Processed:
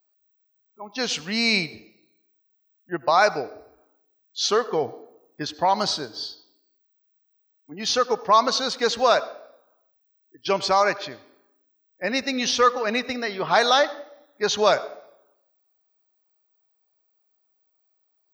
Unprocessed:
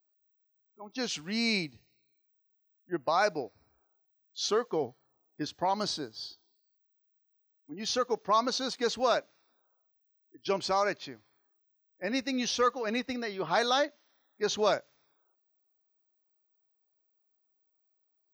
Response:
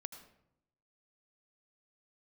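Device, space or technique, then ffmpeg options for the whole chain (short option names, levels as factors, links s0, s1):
filtered reverb send: -filter_complex "[0:a]asplit=2[s0][s1];[s1]highpass=f=280:w=0.5412,highpass=f=280:w=1.3066,lowpass=7200[s2];[1:a]atrim=start_sample=2205[s3];[s2][s3]afir=irnorm=-1:irlink=0,volume=0.794[s4];[s0][s4]amix=inputs=2:normalize=0,volume=2"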